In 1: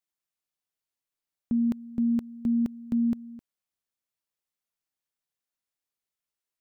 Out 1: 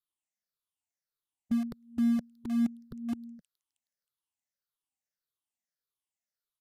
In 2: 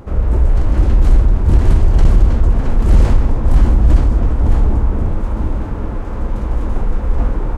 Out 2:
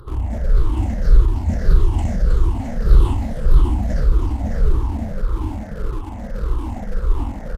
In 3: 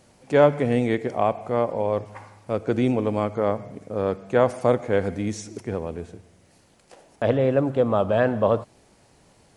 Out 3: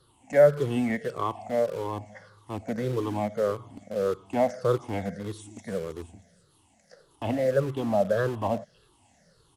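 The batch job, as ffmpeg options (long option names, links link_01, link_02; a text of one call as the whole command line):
ffmpeg -i in.wav -filter_complex "[0:a]afftfilt=real='re*pow(10,20/40*sin(2*PI*(0.61*log(max(b,1)*sr/1024/100)/log(2)-(-1.7)*(pts-256)/sr)))':imag='im*pow(10,20/40*sin(2*PI*(0.61*log(max(b,1)*sr/1024/100)/log(2)-(-1.7)*(pts-256)/sr)))':win_size=1024:overlap=0.75,bandreject=frequency=2400:width=7.5,acrossover=split=340|400|3100[link_01][link_02][link_03][link_04];[link_02]acrusher=bits=5:mix=0:aa=0.000001[link_05];[link_04]aecho=1:1:316|632|948|1264:0.398|0.147|0.0545|0.0202[link_06];[link_01][link_05][link_03][link_06]amix=inputs=4:normalize=0,aresample=32000,aresample=44100,volume=-9dB" out.wav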